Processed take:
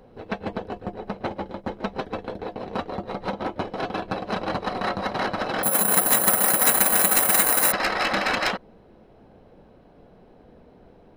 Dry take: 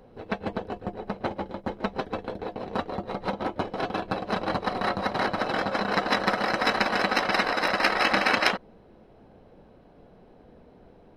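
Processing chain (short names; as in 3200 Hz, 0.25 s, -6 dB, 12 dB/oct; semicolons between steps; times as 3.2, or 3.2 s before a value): soft clip -16 dBFS, distortion -13 dB; 5.63–7.72 careless resampling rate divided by 4×, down filtered, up zero stuff; gain +1.5 dB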